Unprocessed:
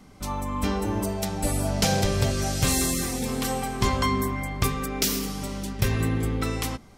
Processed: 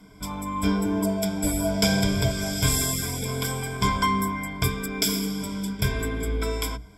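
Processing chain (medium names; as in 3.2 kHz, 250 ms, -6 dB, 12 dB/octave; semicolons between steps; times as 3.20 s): rippled EQ curve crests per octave 1.7, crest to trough 18 dB; trim -3 dB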